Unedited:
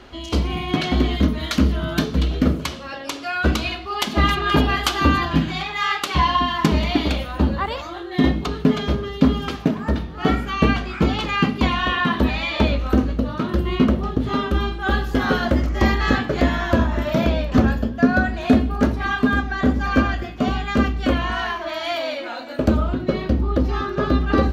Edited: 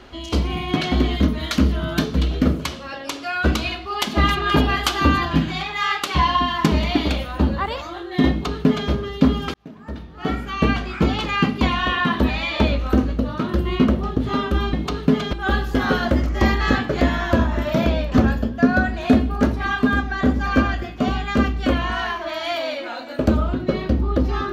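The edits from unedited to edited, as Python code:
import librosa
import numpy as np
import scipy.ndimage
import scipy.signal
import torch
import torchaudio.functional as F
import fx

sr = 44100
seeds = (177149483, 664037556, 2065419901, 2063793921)

y = fx.edit(x, sr, fx.duplicate(start_s=8.3, length_s=0.6, to_s=14.73),
    fx.fade_in_span(start_s=9.54, length_s=1.31), tone=tone)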